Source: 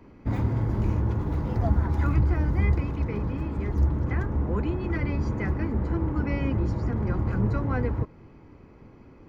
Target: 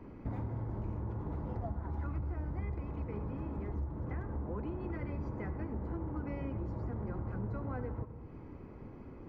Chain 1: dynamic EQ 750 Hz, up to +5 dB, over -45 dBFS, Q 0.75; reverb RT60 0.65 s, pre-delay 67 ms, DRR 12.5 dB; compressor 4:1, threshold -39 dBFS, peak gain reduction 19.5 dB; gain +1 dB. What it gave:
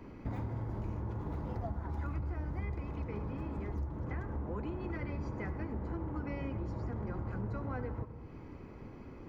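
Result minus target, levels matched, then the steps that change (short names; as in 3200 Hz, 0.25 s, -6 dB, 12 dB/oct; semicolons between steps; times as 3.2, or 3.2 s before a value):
4000 Hz band +7.0 dB
add after compressor: high shelf 2500 Hz -11.5 dB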